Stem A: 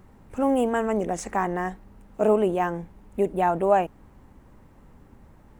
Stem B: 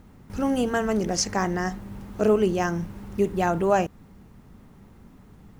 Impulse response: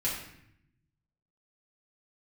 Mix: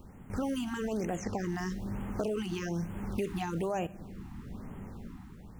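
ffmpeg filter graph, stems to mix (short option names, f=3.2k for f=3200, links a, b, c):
-filter_complex "[0:a]highshelf=f=2.6k:g=7,alimiter=limit=-18.5dB:level=0:latency=1:release=244,aeval=exprs='val(0)+0.00158*(sin(2*PI*60*n/s)+sin(2*PI*2*60*n/s)/2+sin(2*PI*3*60*n/s)/3+sin(2*PI*4*60*n/s)/4+sin(2*PI*5*60*n/s)/5)':c=same,volume=-5.5dB[a];[1:a]highshelf=f=5.8k:g=-7.5,dynaudnorm=f=100:g=13:m=9dB,alimiter=limit=-13dB:level=0:latency=1:release=37,volume=-3dB,asplit=2[b][c];[c]volume=-20.5dB[d];[2:a]atrim=start_sample=2205[e];[d][e]afir=irnorm=-1:irlink=0[f];[a][b][f]amix=inputs=3:normalize=0,acrossover=split=770|3200[g][h][i];[g]acompressor=threshold=-33dB:ratio=4[j];[h]acompressor=threshold=-44dB:ratio=4[k];[i]acompressor=threshold=-45dB:ratio=4[l];[j][k][l]amix=inputs=3:normalize=0,afftfilt=real='re*(1-between(b*sr/1024,480*pow(4900/480,0.5+0.5*sin(2*PI*1.1*pts/sr))/1.41,480*pow(4900/480,0.5+0.5*sin(2*PI*1.1*pts/sr))*1.41))':imag='im*(1-between(b*sr/1024,480*pow(4900/480,0.5+0.5*sin(2*PI*1.1*pts/sr))/1.41,480*pow(4900/480,0.5+0.5*sin(2*PI*1.1*pts/sr))*1.41))':win_size=1024:overlap=0.75"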